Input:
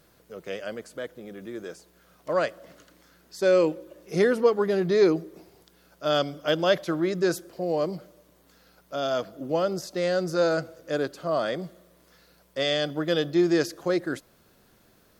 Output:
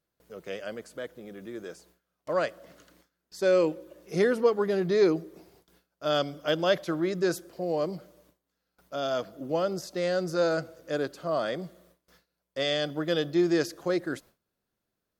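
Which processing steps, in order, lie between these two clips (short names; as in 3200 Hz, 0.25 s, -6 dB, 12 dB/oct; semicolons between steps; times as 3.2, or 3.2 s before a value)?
gate with hold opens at -46 dBFS; gain -2.5 dB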